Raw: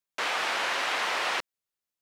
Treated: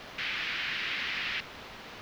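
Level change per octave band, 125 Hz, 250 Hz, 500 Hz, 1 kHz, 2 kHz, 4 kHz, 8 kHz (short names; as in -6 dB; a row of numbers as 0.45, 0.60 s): n/a, -1.5 dB, -12.0 dB, -13.0 dB, -3.0 dB, -2.0 dB, -13.5 dB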